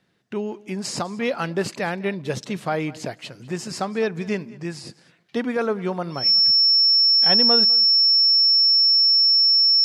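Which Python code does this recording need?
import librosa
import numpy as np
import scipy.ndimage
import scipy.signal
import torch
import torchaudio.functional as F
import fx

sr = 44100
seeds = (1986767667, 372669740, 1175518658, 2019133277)

y = fx.notch(x, sr, hz=5400.0, q=30.0)
y = fx.fix_echo_inverse(y, sr, delay_ms=201, level_db=-21.0)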